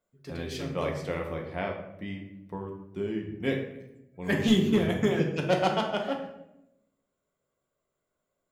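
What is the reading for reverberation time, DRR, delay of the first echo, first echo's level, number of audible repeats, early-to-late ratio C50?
0.90 s, 1.0 dB, none, none, none, 6.5 dB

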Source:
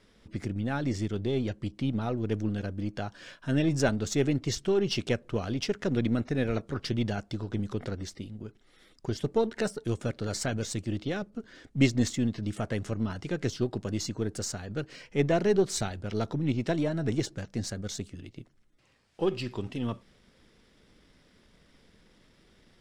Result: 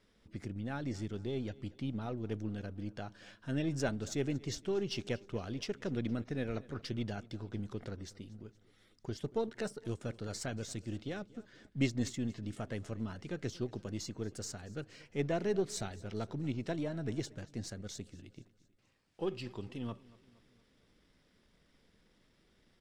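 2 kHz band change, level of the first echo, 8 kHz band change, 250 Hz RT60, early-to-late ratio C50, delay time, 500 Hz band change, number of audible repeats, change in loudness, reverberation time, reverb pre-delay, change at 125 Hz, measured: -8.5 dB, -21.5 dB, -8.5 dB, none, none, 0.233 s, -8.5 dB, 3, -8.5 dB, none, none, -8.5 dB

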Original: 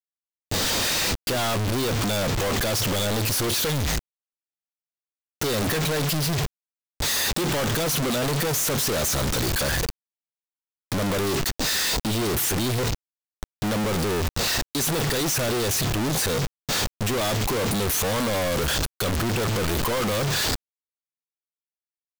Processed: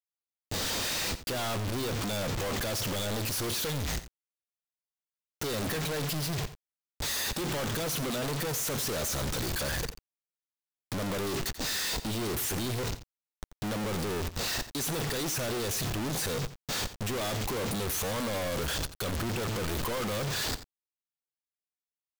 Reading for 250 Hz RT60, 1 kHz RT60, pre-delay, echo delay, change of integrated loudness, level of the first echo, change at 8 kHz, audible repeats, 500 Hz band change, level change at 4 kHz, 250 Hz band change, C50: none, none, none, 87 ms, -8.0 dB, -14.0 dB, -8.0 dB, 1, -8.0 dB, -8.0 dB, -8.0 dB, none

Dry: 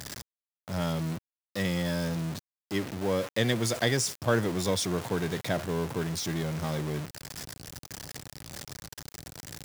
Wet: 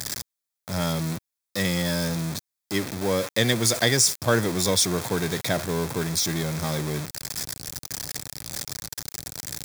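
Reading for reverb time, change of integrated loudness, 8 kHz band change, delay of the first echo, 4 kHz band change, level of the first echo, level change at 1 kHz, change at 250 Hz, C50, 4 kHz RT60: none, +5.5 dB, +11.0 dB, none, +8.5 dB, none, +4.5 dB, +3.5 dB, none, none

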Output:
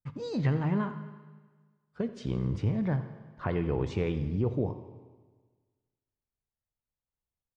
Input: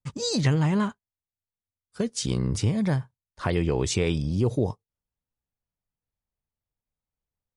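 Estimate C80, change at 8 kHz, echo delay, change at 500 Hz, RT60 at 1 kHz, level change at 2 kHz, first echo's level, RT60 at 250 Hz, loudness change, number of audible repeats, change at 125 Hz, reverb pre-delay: 11.5 dB, under -25 dB, 85 ms, -5.0 dB, 1.4 s, -7.5 dB, -16.5 dB, 1.5 s, -5.0 dB, 3, -4.5 dB, 20 ms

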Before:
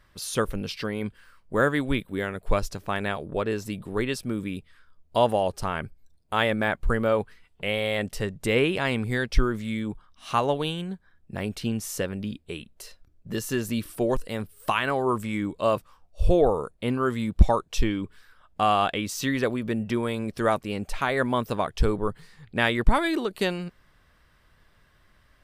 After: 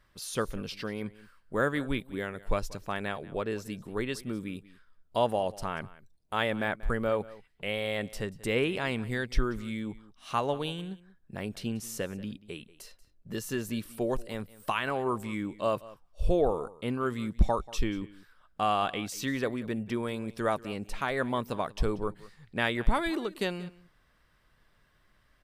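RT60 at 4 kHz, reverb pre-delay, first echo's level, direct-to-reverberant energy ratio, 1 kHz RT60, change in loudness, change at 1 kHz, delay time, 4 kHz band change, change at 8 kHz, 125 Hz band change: none, none, -19.5 dB, none, none, -5.5 dB, -5.5 dB, 0.186 s, -5.5 dB, -5.5 dB, -6.5 dB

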